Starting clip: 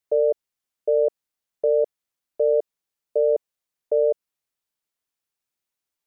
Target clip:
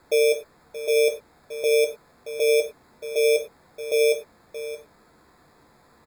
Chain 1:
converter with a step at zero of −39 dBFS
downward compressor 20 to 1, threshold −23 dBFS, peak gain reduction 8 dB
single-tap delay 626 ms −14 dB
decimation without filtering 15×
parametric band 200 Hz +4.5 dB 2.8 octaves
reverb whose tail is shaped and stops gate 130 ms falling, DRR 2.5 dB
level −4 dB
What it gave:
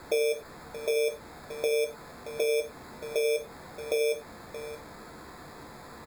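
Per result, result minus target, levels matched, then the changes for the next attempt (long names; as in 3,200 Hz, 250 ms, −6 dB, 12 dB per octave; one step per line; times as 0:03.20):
downward compressor: peak gain reduction +8 dB; converter with a step at zero: distortion +11 dB
remove: downward compressor 20 to 1, threshold −23 dBFS, peak gain reduction 8 dB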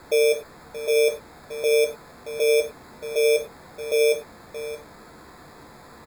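converter with a step at zero: distortion +11 dB
change: converter with a step at zero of −50 dBFS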